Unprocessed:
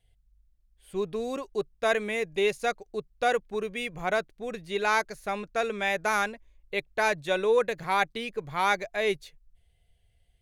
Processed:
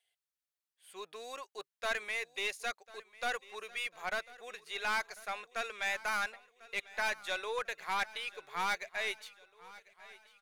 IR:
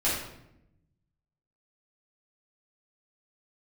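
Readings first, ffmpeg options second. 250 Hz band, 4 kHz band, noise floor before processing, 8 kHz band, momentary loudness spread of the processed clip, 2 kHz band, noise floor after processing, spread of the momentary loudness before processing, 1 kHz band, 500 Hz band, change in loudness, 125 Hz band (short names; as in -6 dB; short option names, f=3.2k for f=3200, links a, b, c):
-19.5 dB, -4.0 dB, -68 dBFS, -4.5 dB, 19 LU, -5.0 dB, under -85 dBFS, 8 LU, -9.0 dB, -15.5 dB, -8.0 dB, under -15 dB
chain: -filter_complex "[0:a]highpass=1k,aeval=exprs='(tanh(17.8*val(0)+0.25)-tanh(0.25))/17.8':c=same,asplit=2[a][b];[b]aecho=0:1:1046|2092|3138|4184:0.1|0.052|0.027|0.0141[c];[a][c]amix=inputs=2:normalize=0,volume=-1.5dB"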